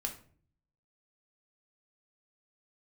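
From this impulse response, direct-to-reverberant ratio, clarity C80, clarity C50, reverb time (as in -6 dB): 3.5 dB, 15.5 dB, 10.5 dB, 0.50 s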